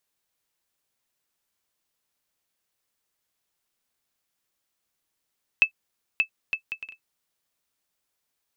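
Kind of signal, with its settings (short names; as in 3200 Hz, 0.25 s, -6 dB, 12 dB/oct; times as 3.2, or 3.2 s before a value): bouncing ball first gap 0.58 s, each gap 0.57, 2620 Hz, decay 93 ms -7 dBFS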